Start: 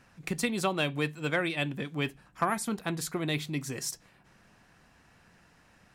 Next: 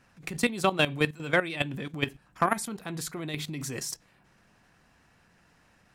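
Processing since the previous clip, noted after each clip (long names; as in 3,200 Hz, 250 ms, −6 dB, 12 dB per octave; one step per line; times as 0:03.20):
output level in coarse steps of 14 dB
level +7 dB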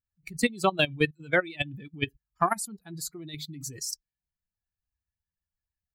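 spectral dynamics exaggerated over time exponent 2
in parallel at −2.5 dB: brickwall limiter −18.5 dBFS, peak gain reduction 7 dB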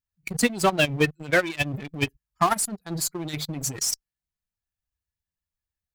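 dynamic equaliser 3,700 Hz, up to −6 dB, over −50 dBFS, Q 4.3
in parallel at −11.5 dB: fuzz pedal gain 36 dB, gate −43 dBFS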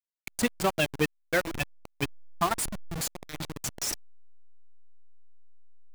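hold until the input has moved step −22.5 dBFS
level −5 dB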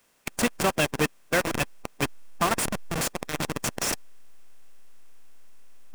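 compressor on every frequency bin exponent 0.6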